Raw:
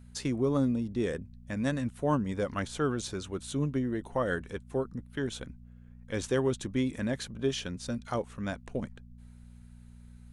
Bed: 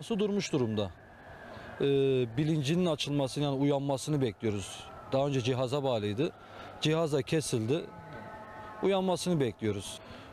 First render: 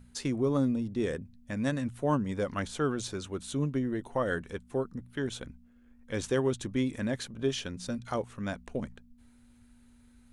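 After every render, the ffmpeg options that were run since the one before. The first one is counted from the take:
-af "bandreject=f=60:t=h:w=4,bandreject=f=120:t=h:w=4,bandreject=f=180:t=h:w=4"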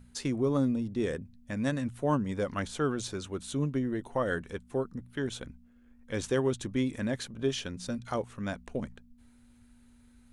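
-af anull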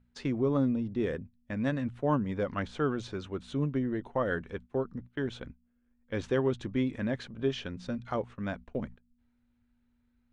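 -af "agate=range=-13dB:threshold=-44dB:ratio=16:detection=peak,lowpass=3.2k"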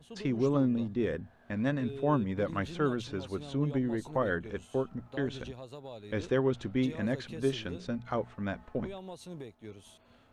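-filter_complex "[1:a]volume=-15dB[a];[0:a][a]amix=inputs=2:normalize=0"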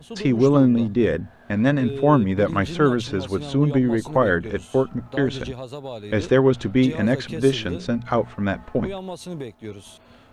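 -af "volume=11.5dB"

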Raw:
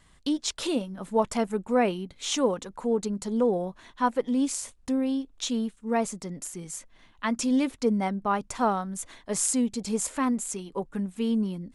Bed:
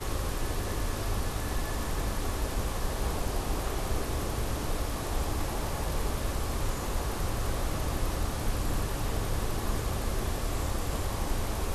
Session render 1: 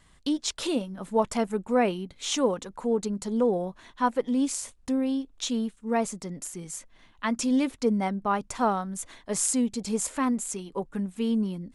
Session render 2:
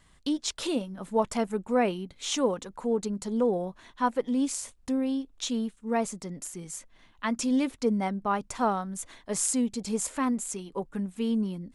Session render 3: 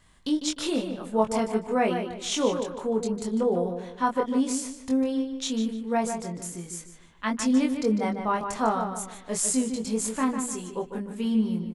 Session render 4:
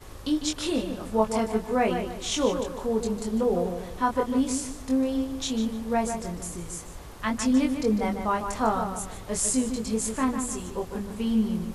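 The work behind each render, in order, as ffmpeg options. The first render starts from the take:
-af anull
-af "volume=-1.5dB"
-filter_complex "[0:a]asplit=2[a][b];[b]adelay=23,volume=-3.5dB[c];[a][c]amix=inputs=2:normalize=0,asplit=2[d][e];[e]adelay=150,lowpass=f=3.7k:p=1,volume=-7dB,asplit=2[f][g];[g]adelay=150,lowpass=f=3.7k:p=1,volume=0.37,asplit=2[h][i];[i]adelay=150,lowpass=f=3.7k:p=1,volume=0.37,asplit=2[j][k];[k]adelay=150,lowpass=f=3.7k:p=1,volume=0.37[l];[f][h][j][l]amix=inputs=4:normalize=0[m];[d][m]amix=inputs=2:normalize=0"
-filter_complex "[1:a]volume=-11.5dB[a];[0:a][a]amix=inputs=2:normalize=0"

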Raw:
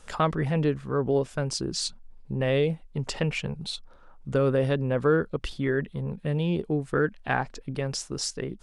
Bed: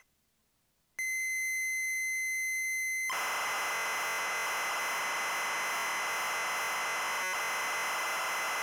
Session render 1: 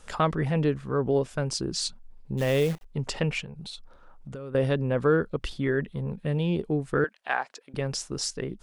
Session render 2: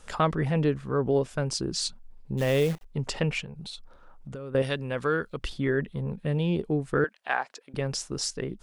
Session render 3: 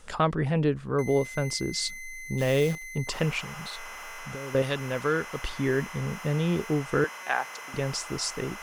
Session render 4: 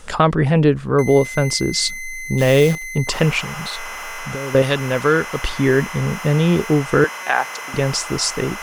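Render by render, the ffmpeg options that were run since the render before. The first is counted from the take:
-filter_complex "[0:a]asplit=3[a][b][c];[a]afade=t=out:st=2.37:d=0.02[d];[b]acrusher=bits=7:dc=4:mix=0:aa=0.000001,afade=t=in:st=2.37:d=0.02,afade=t=out:st=2.84:d=0.02[e];[c]afade=t=in:st=2.84:d=0.02[f];[d][e][f]amix=inputs=3:normalize=0,asettb=1/sr,asplit=3[g][h][i];[g]atrim=end=3.424[j];[h]atrim=start=3.42:end=4.55,asetpts=PTS-STARTPTS,afade=t=in:d=0.004:c=qsin,afade=t=out:st=1.126:d=0.004:c=qsin,acompressor=threshold=-36dB:ratio=6:attack=3.2:release=140:knee=1:detection=peak[k];[i]atrim=start=4.546[l];[j][k]acrossfade=d=0.004:c1=hsin:c2=qsin[m];[m][l]acrossfade=d=0.004:c1=qsin:c2=hsin,asettb=1/sr,asplit=3[n][o][p];[n]atrim=end=7.044[q];[o]atrim=start=7.04:end=7.74,asetpts=PTS-STARTPTS,afade=t=in:d=0.004:c=qsin,afade=t=out:st=0.696:d=0.004:c=qsin,highpass=610[r];[p]atrim=start=7.736[s];[q][r]acrossfade=d=0.004:c1=hsin:c2=qsin[t];[t][s]acrossfade=d=0.004:c1=qsin:c2=hsin"
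-filter_complex "[0:a]asettb=1/sr,asplit=3[a][b][c];[a]atrim=end=4.624[d];[b]atrim=start=4.62:end=5.37,asetpts=PTS-STARTPTS,afade=t=in:d=0.004:c=qsin,afade=t=out:st=0.746:d=0.004:c=qsin,tiltshelf=f=1.3k:g=-7[e];[c]atrim=start=5.366[f];[d][e]acrossfade=d=0.004:c1=hsin:c2=qsin[g];[g][f]acrossfade=d=0.004:c1=qsin:c2=hsin"
-filter_complex "[1:a]volume=-8dB[a];[0:a][a]amix=inputs=2:normalize=0"
-af "volume=10.5dB,alimiter=limit=-3dB:level=0:latency=1"

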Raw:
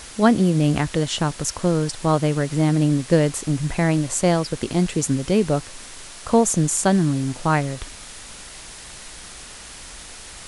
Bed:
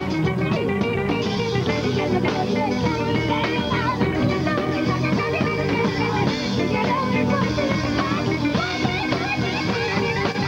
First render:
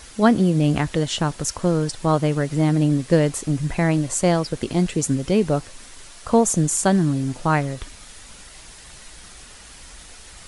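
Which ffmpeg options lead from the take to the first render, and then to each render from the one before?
-af "afftdn=nr=6:nf=-40"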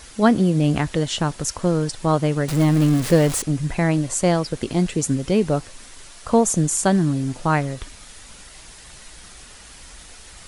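-filter_complex "[0:a]asettb=1/sr,asplit=3[a][b][c];[a]atrim=end=2.484[d];[b]atrim=start=2.48:end=3.42,asetpts=PTS-STARTPTS,afade=t=in:d=0.004:c=qsin,afade=t=out:st=0.936:d=0.004:c=qsin,aeval=exprs='val(0)+0.5*0.0708*sgn(val(0))':c=same[e];[c]atrim=start=3.416[f];[d][e]acrossfade=d=0.004:c1=hsin:c2=qsin[g];[g][f]acrossfade=d=0.004:c1=qsin:c2=hsin"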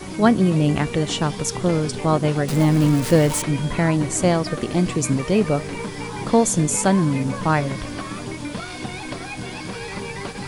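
-filter_complex "[1:a]volume=-9dB[a];[0:a][a]amix=inputs=2:normalize=0"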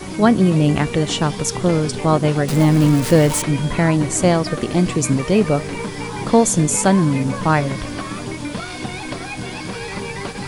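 -af "volume=3dB,alimiter=limit=-2dB:level=0:latency=1"

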